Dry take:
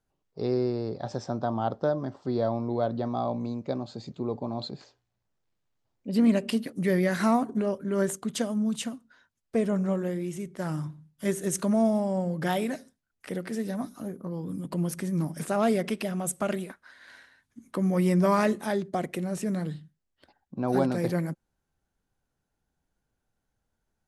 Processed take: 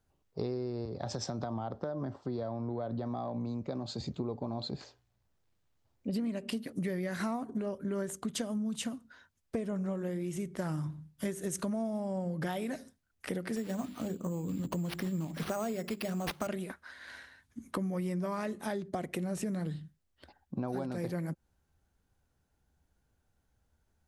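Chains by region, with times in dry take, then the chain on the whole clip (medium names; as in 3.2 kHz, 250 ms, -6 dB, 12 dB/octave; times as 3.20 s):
0.85–4.01 s: high-pass 45 Hz + compression, threshold -31 dBFS + three bands expanded up and down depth 70%
13.56–16.47 s: hum notches 50/100/150/200/250/300/350/400 Hz + careless resampling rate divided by 6×, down none, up hold
whole clip: peaking EQ 72 Hz +10 dB 0.76 oct; compression 12:1, threshold -34 dBFS; trim +2.5 dB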